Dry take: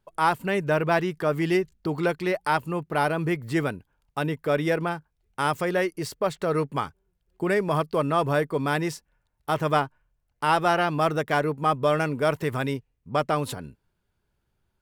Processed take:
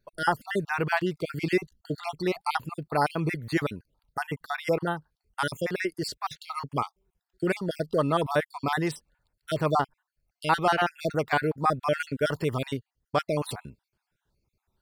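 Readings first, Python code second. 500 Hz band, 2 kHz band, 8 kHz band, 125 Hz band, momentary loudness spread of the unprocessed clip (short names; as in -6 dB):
-4.0 dB, -2.0 dB, -2.5 dB, -3.0 dB, 9 LU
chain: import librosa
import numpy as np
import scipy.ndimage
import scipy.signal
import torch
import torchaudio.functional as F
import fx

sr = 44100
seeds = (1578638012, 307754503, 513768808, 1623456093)

y = fx.spec_dropout(x, sr, seeds[0], share_pct=44)
y = fx.peak_eq(y, sr, hz=4400.0, db=8.0, octaves=0.22)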